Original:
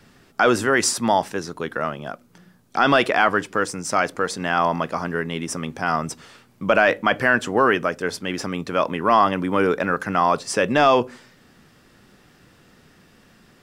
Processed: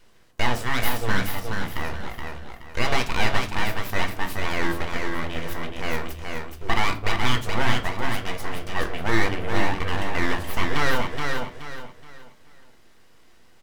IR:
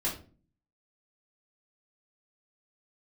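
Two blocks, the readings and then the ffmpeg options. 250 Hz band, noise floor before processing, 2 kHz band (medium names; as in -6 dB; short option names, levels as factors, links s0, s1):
-6.0 dB, -55 dBFS, -4.0 dB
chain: -filter_complex "[0:a]aeval=exprs='abs(val(0))':c=same,aecho=1:1:424|848|1272|1696:0.596|0.191|0.061|0.0195,asplit=2[s0][s1];[1:a]atrim=start_sample=2205[s2];[s1][s2]afir=irnorm=-1:irlink=0,volume=0.355[s3];[s0][s3]amix=inputs=2:normalize=0,volume=0.473"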